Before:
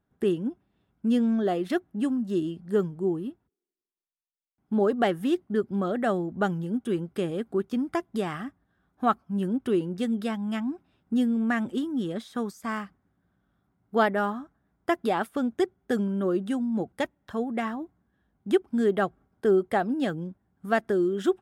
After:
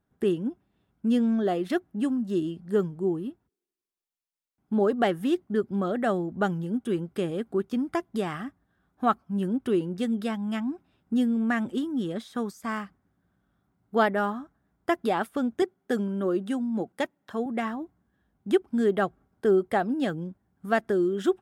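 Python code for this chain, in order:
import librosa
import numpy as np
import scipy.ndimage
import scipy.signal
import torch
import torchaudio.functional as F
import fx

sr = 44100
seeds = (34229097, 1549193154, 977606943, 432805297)

y = fx.highpass(x, sr, hz=170.0, slope=12, at=(15.62, 17.46))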